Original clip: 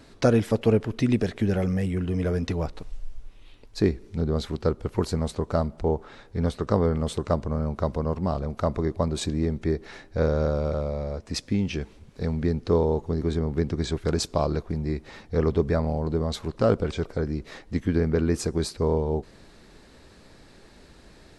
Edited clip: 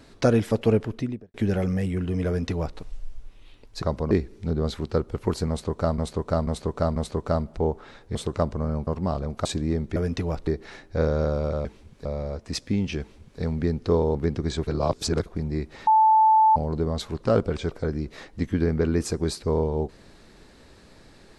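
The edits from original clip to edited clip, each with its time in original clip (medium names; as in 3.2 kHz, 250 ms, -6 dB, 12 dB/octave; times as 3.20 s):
0.78–1.34 s: studio fade out
2.27–2.78 s: copy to 9.68 s
5.20–5.69 s: loop, 4 plays
6.39–7.06 s: delete
7.78–8.07 s: move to 3.82 s
8.65–9.17 s: delete
11.81–12.21 s: copy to 10.86 s
12.96–13.49 s: delete
14.01–14.60 s: reverse
15.21–15.90 s: bleep 876 Hz -13.5 dBFS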